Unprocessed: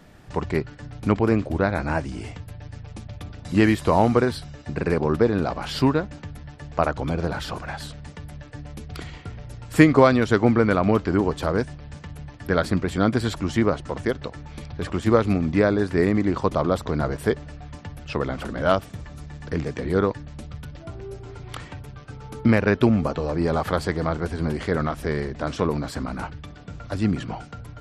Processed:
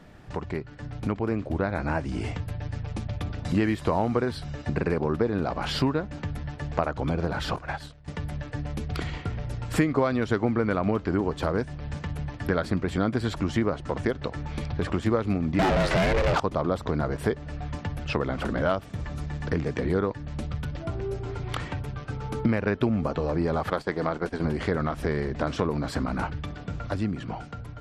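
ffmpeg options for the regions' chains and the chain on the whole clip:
-filter_complex "[0:a]asettb=1/sr,asplit=3[a][b][c];[a]atrim=end=7.564[d];[b]atrim=start=7.56:end=8.08,asetpts=PTS-STARTPTS,afade=t=in:d=0.004:c=qsin,afade=t=out:st=0.516:d=0.004:c=qsin,agate=range=-33dB:threshold=-28dB:ratio=3:release=100:detection=peak,equalizer=f=200:t=o:w=0.4:g=-9[e];[c]atrim=start=8.076[f];[d][e]acrossfade=d=0.004:c1=hsin:c2=qsin[g];[g][f]acrossfade=d=0.004:c1=qsin:c2=hsin,asettb=1/sr,asplit=3[h][i][j];[h]atrim=end=15.594[k];[i]atrim=start=15.59:end=16.4,asetpts=PTS-STARTPTS,afade=t=in:d=0.004:c=qsin,afade=t=out:st=0.806:d=0.004:c=qsin,asplit=2[l][m];[m]highpass=f=720:p=1,volume=34dB,asoftclip=type=tanh:threshold=-5dB[n];[l][n]amix=inputs=2:normalize=0,lowpass=f=7.4k:p=1,volume=-6dB,aeval=exprs='val(0)*sin(2*PI*240*n/s)':c=same[o];[j]atrim=start=16.396[p];[k][o]acrossfade=d=0.004:c1=hsin:c2=qsin[q];[q][p]acrossfade=d=0.004:c1=qsin:c2=hsin,asettb=1/sr,asplit=3[r][s][t];[r]atrim=end=23.704[u];[s]atrim=start=23.7:end=24.45,asetpts=PTS-STARTPTS,afade=t=in:d=0.004:c=qsin,afade=t=out:st=0.746:d=0.004:c=qsin,agate=range=-14dB:threshold=-30dB:ratio=16:release=100:detection=peak,equalizer=f=79:w=0.8:g=-13.5[v];[t]atrim=start=24.446[w];[u][v]acrossfade=d=0.004:c1=hsin:c2=qsin[x];[x][w]acrossfade=d=0.004:c1=qsin:c2=hsin,acompressor=threshold=-30dB:ratio=3,highshelf=f=5.6k:g=-8.5,dynaudnorm=f=280:g=9:m=5.5dB"

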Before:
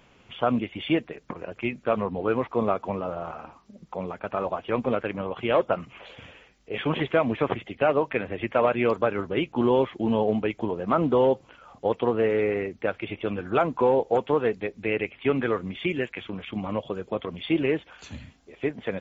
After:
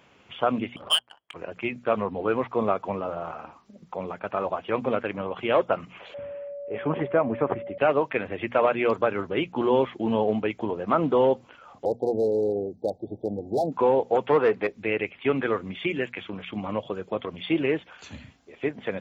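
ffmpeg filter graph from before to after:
-filter_complex "[0:a]asettb=1/sr,asplit=3[a][b][c];[a]atrim=end=0.764[d];[b]atrim=start=0.76:end=1.34,asetpts=PTS-STARTPTS,afade=t=in:d=0.004:c=qsin,afade=t=out:st=0.576:d=0.004:c=qsin,lowpass=f=2.9k:t=q:w=0.5098,lowpass=f=2.9k:t=q:w=0.6013,lowpass=f=2.9k:t=q:w=0.9,lowpass=f=2.9k:t=q:w=2.563,afreqshift=-3400,adynamicsmooth=sensitivity=2:basefreq=540[e];[c]atrim=start=1.336[f];[d][e]acrossfade=d=0.004:c1=hsin:c2=qsin[g];[g][f]acrossfade=d=0.004:c1=qsin:c2=hsin,asettb=1/sr,asplit=3[h][i][j];[h]atrim=end=6.144[k];[i]atrim=start=6.14:end=7.78,asetpts=PTS-STARTPTS,afade=t=in:d=0.004:c=qsin,afade=t=out:st=1.636:d=0.004:c=qsin,lowpass=1.4k,aeval=exprs='val(0)+0.02*sin(2*PI*570*n/s)':c=same[l];[j]atrim=start=7.776[m];[k][l]acrossfade=d=0.004:c1=hsin:c2=qsin[n];[n][m]acrossfade=d=0.004:c1=qsin:c2=hsin,asettb=1/sr,asplit=3[o][p][q];[o]atrim=end=11.854[r];[p]atrim=start=11.85:end=13.72,asetpts=PTS-STARTPTS,afade=t=in:d=0.004:c=qsin,afade=t=out:st=1.866:d=0.004:c=qsin,highshelf=f=2.5k:t=q:w=1.5:g=-11,volume=17.5dB,asoftclip=hard,volume=-17.5dB,asuperstop=centerf=1800:order=20:qfactor=0.59[s];[q]atrim=start=13.716[t];[r][s]acrossfade=d=0.004:c1=hsin:c2=qsin[u];[u][t]acrossfade=d=0.004:c1=qsin:c2=hsin,asettb=1/sr,asplit=3[v][w][x];[v]atrim=end=14.274[y];[w]atrim=start=14.27:end=14.67,asetpts=PTS-STARTPTS,afade=t=in:d=0.004:c=qsin,afade=t=out:st=0.396:d=0.004:c=qsin,bass=f=250:g=2,treble=f=4k:g=-10,asplit=2[z][aa];[aa]highpass=f=720:p=1,volume=17dB,asoftclip=type=tanh:threshold=-10dB[ab];[z][ab]amix=inputs=2:normalize=0,lowpass=f=1.5k:p=1,volume=-6dB[ac];[x]atrim=start=14.666[ad];[y][ac]acrossfade=d=0.004:c1=hsin:c2=qsin[ae];[ae][ad]acrossfade=d=0.004:c1=qsin:c2=hsin,highpass=71,equalizer=f=1.3k:w=0.33:g=2.5,bandreject=f=60:t=h:w=6,bandreject=f=120:t=h:w=6,bandreject=f=180:t=h:w=6,bandreject=f=240:t=h:w=6,volume=-1.5dB"

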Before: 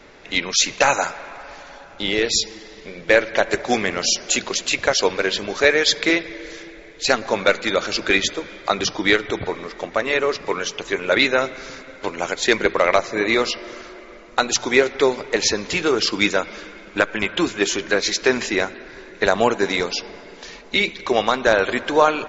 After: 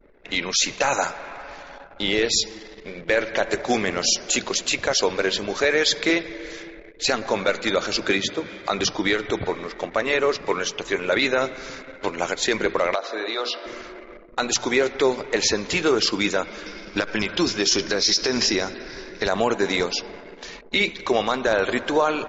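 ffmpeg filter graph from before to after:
-filter_complex "[0:a]asettb=1/sr,asplit=3[a][b][c];[a]atrim=end=8.094[d];[b]atrim=start=8.09:end=8.67,asetpts=PTS-STARTPTS,afade=t=in:d=0.004:c=qsin,afade=t=out:st=0.576:d=0.004:c=qsin,highpass=81,bass=f=250:g=6,treble=f=4k:g=2,acrossover=split=110|4900[e][f][g];[e]acompressor=threshold=-48dB:ratio=4[h];[f]acompressor=threshold=-16dB:ratio=4[i];[g]acompressor=threshold=-39dB:ratio=4[j];[h][i][j]amix=inputs=3:normalize=0[k];[c]atrim=start=8.666[l];[d][k]acrossfade=d=0.004:c1=hsin:c2=qsin[m];[m][l]acrossfade=d=0.004:c1=qsin:c2=hsin,asettb=1/sr,asplit=3[n][o][p];[n]atrim=end=12.954[q];[o]atrim=start=12.95:end=13.66,asetpts=PTS-STARTPTS,afade=t=in:d=0.004:c=qsin,afade=t=out:st=0.706:d=0.004:c=qsin,bandreject=f=60:t=h:w=6,bandreject=f=120:t=h:w=6,bandreject=f=180:t=h:w=6,bandreject=f=240:t=h:w=6,bandreject=f=300:t=h:w=6,bandreject=f=360:t=h:w=6,bandreject=f=420:t=h:w=6,bandreject=f=480:t=h:w=6,bandreject=f=540:t=h:w=6,acompressor=threshold=-22dB:ratio=4:attack=3.2:release=140:knee=1:detection=peak,highpass=f=310:w=0.5412,highpass=f=310:w=1.3066,equalizer=f=360:t=q:w=4:g=-3,equalizer=f=700:t=q:w=4:g=4,equalizer=f=1.4k:t=q:w=4:g=5,equalizer=f=2.1k:t=q:w=4:g=-5,equalizer=f=3.7k:t=q:w=4:g=7,lowpass=f=5.5k:w=0.5412,lowpass=f=5.5k:w=1.3066[r];[p]atrim=start=13.656[s];[q][r]acrossfade=d=0.004:c1=hsin:c2=qsin[t];[t][s]acrossfade=d=0.004:c1=qsin:c2=hsin,asettb=1/sr,asplit=3[u][v][w];[u]atrim=end=16.664[x];[v]atrim=start=16.66:end=19.29,asetpts=PTS-STARTPTS,afade=t=in:d=0.004:c=qsin,afade=t=out:st=2.626:d=0.004:c=qsin,acompressor=threshold=-18dB:ratio=6:attack=3.2:release=140:knee=1:detection=peak,lowpass=f=5.3k:t=q:w=6.7,lowshelf=f=370:g=4.5[y];[w]atrim=start=19.286[z];[x][y]acrossfade=d=0.004:c1=hsin:c2=qsin[aa];[aa][z]acrossfade=d=0.004:c1=qsin:c2=hsin,anlmdn=0.251,adynamicequalizer=threshold=0.0224:dfrequency=2200:dqfactor=0.93:tfrequency=2200:tqfactor=0.93:attack=5:release=100:ratio=0.375:range=1.5:mode=cutabove:tftype=bell,alimiter=limit=-9.5dB:level=0:latency=1:release=29"

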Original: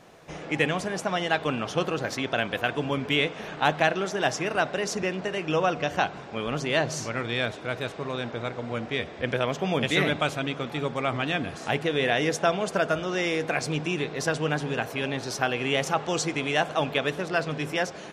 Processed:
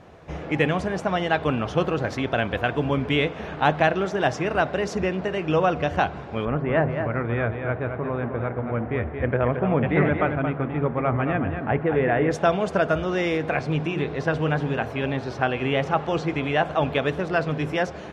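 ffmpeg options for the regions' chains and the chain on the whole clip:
-filter_complex "[0:a]asettb=1/sr,asplit=3[a][b][c];[a]atrim=end=6.454[d];[b]atrim=start=6.45:end=12.31,asetpts=PTS-STARTPTS,afade=t=in:d=0.004:c=qsin,afade=t=out:st=5.856:d=0.004:c=qsin,lowpass=f=2.1k:w=0.5412,lowpass=f=2.1k:w=1.3066,aecho=1:1:225:0.447,atrim=end_sample=258426[e];[c]atrim=start=12.306[f];[d][e]acrossfade=d=0.004:c1=hsin:c2=qsin[g];[g][f]acrossfade=d=0.004:c1=qsin:c2=hsin,asettb=1/sr,asplit=3[h][i][j];[h]atrim=end=13.374[k];[i]atrim=start=13.37:end=16.83,asetpts=PTS-STARTPTS,afade=t=in:d=0.004:c=qsin,afade=t=out:st=3.456:d=0.004:c=qsin,acrossover=split=4100[l][m];[m]acompressor=threshold=-48dB:ratio=4:attack=1:release=60[n];[l][n]amix=inputs=2:normalize=0,bandreject=f=60:t=h:w=6,bandreject=f=120:t=h:w=6,bandreject=f=180:t=h:w=6,bandreject=f=240:t=h:w=6,bandreject=f=300:t=h:w=6,bandreject=f=360:t=h:w=6,bandreject=f=420:t=h:w=6,bandreject=f=480:t=h:w=6[o];[j]atrim=start=16.826[p];[k][o]acrossfade=d=0.004:c1=hsin:c2=qsin[q];[q][p]acrossfade=d=0.004:c1=qsin:c2=hsin,lowpass=f=1.8k:p=1,equalizer=f=73:w=1.8:g=15,volume=4dB"

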